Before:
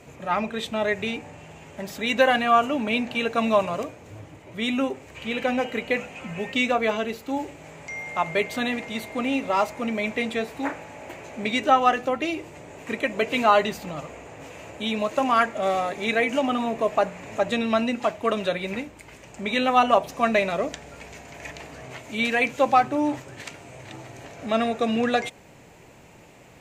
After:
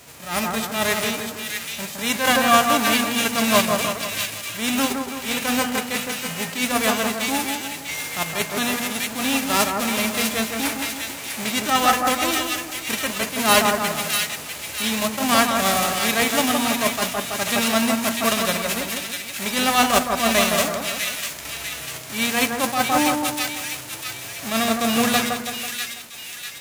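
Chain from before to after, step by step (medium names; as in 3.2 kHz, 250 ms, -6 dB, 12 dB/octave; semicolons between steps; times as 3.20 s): formants flattened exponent 0.3; two-band feedback delay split 1.7 kHz, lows 164 ms, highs 647 ms, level -4.5 dB; attacks held to a fixed rise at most 120 dB/s; trim +2.5 dB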